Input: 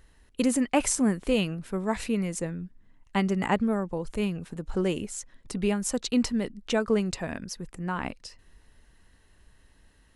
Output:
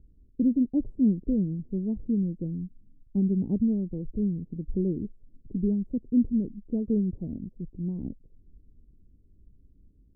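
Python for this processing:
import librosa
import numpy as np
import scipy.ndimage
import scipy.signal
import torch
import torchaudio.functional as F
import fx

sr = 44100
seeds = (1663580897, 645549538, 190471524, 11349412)

y = scipy.signal.sosfilt(scipy.signal.cheby2(4, 70, 1500.0, 'lowpass', fs=sr, output='sos'), x)
y = F.gain(torch.from_numpy(y), 2.5).numpy()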